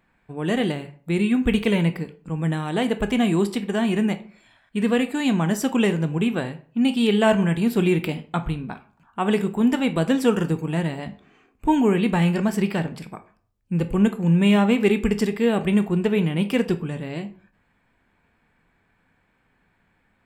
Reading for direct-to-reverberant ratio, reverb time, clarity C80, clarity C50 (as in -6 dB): 9.5 dB, 0.45 s, 19.5 dB, 15.0 dB